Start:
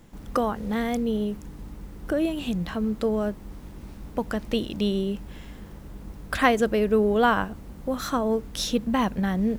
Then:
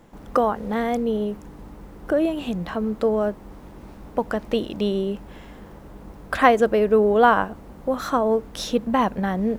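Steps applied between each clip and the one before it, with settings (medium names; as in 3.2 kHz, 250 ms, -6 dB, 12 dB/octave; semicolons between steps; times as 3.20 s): peaking EQ 720 Hz +10 dB 2.9 oct; trim -3.5 dB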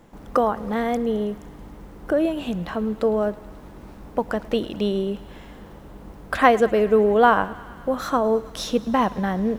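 thinning echo 108 ms, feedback 81%, high-pass 590 Hz, level -19.5 dB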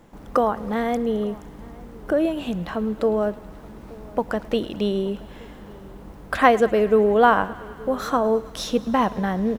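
echo from a far wall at 150 m, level -22 dB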